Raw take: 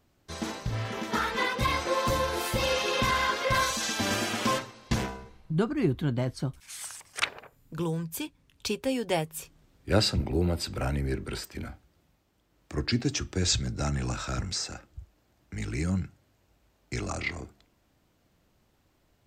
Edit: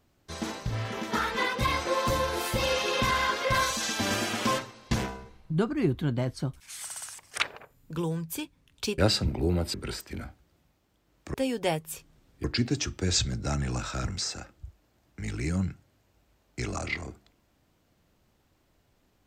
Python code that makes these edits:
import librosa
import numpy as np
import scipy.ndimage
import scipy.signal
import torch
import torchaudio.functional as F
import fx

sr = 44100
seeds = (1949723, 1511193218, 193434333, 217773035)

y = fx.edit(x, sr, fx.stutter(start_s=6.84, slice_s=0.06, count=4),
    fx.move(start_s=8.8, length_s=1.1, to_s=12.78),
    fx.cut(start_s=10.66, length_s=0.52), tone=tone)